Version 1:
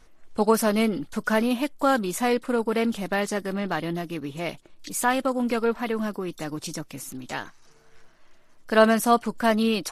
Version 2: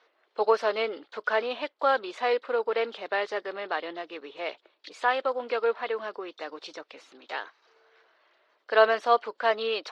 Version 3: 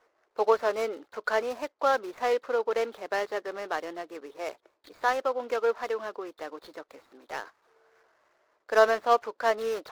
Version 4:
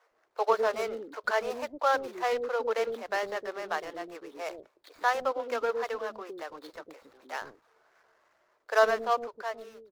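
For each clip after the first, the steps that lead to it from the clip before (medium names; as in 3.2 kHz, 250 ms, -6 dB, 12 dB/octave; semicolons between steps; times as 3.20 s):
Chebyshev band-pass 430–4100 Hz, order 3; trim -1 dB
median filter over 15 samples
fade out at the end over 1.21 s; bands offset in time highs, lows 110 ms, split 420 Hz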